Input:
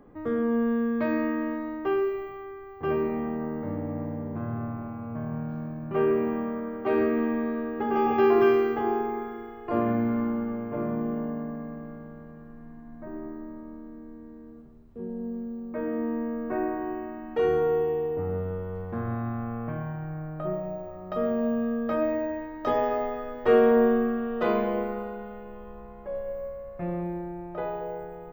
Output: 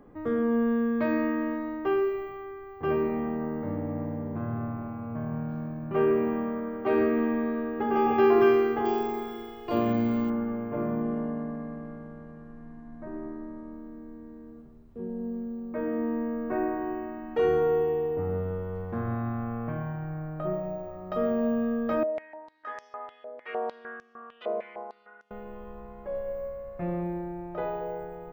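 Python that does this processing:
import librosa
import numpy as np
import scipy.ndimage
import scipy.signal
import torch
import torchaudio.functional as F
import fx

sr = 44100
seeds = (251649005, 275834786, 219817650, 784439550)

y = fx.high_shelf_res(x, sr, hz=2600.0, db=13.5, q=1.5, at=(8.85, 10.3))
y = fx.savgol(y, sr, points=9, at=(11.02, 13.72))
y = fx.filter_held_bandpass(y, sr, hz=6.6, low_hz=590.0, high_hz=5900.0, at=(22.03, 25.31))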